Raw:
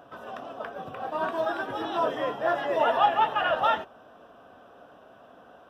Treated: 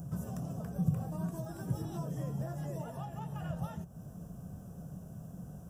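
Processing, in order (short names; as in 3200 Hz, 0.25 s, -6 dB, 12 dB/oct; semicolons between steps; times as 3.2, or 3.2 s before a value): low shelf 350 Hz +12 dB; compressor 4:1, threshold -34 dBFS, peak gain reduction 16.5 dB; EQ curve 110 Hz 0 dB, 170 Hz +7 dB, 250 Hz -16 dB, 1300 Hz -25 dB, 3600 Hz -25 dB, 6900 Hz +7 dB; gain +10 dB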